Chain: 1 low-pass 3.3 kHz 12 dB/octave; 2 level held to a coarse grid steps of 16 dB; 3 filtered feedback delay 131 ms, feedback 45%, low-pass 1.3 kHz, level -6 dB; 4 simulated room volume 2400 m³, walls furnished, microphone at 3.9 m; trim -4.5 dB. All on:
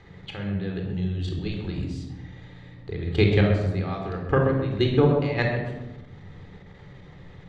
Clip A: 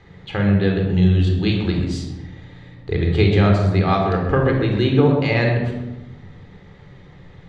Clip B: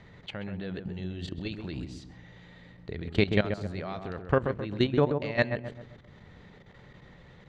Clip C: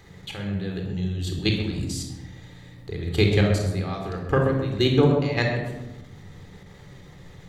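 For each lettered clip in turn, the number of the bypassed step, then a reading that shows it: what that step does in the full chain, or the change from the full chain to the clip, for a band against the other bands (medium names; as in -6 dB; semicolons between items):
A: 2, crest factor change -2.5 dB; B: 4, echo-to-direct -1.0 dB to -9.0 dB; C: 1, 4 kHz band +5.5 dB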